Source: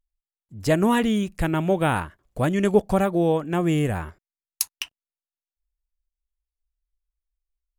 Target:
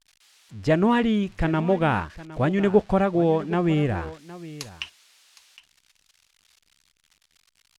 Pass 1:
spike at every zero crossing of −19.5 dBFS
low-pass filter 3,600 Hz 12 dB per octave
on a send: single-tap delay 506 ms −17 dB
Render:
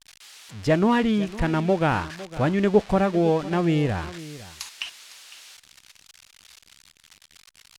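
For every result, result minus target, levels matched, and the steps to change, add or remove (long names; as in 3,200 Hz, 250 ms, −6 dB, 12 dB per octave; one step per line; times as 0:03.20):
spike at every zero crossing: distortion +11 dB; echo 256 ms early
change: spike at every zero crossing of −30.5 dBFS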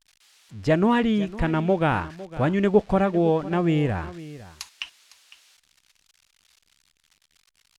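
echo 256 ms early
change: single-tap delay 762 ms −17 dB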